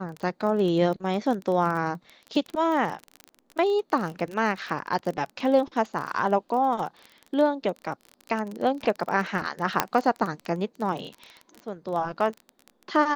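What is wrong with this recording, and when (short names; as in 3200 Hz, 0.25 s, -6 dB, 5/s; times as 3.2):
crackle 24/s -30 dBFS
9.8 pop -4 dBFS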